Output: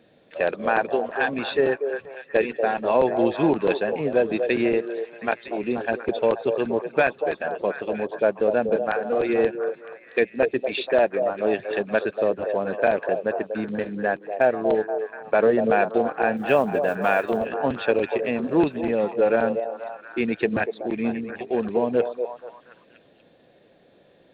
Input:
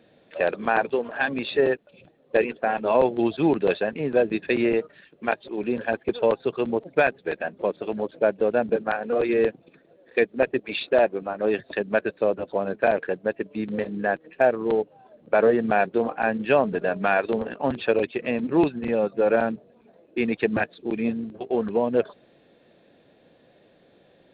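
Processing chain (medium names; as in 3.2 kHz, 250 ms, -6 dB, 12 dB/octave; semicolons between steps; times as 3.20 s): 16.37–17.47 s: block-companded coder 7-bit; repeats whose band climbs or falls 240 ms, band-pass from 540 Hz, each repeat 0.7 oct, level -5 dB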